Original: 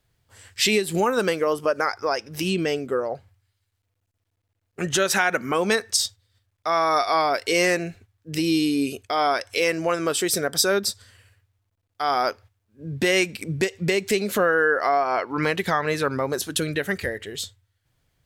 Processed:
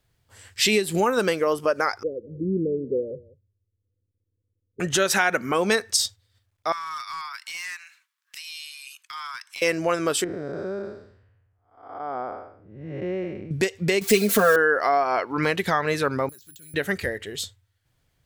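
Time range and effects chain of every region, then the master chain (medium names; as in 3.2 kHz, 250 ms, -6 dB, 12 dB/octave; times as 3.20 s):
2.03–4.80 s: steep low-pass 540 Hz 96 dB/octave + delay 185 ms -20.5 dB
6.72–9.62 s: steep high-pass 960 Hz 72 dB/octave + compression 1.5:1, threshold -46 dBFS + hard clipper -27.5 dBFS
10.24–13.51 s: spectral blur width 334 ms + Bessel low-pass 850 Hz
14.01–14.56 s: zero-crossing glitches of -25 dBFS + comb 4.4 ms, depth 89%
16.29–16.74 s: amplifier tone stack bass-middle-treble 6-0-2 + compression 12:1, threshold -47 dBFS + careless resampling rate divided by 4×, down filtered, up zero stuff
whole clip: none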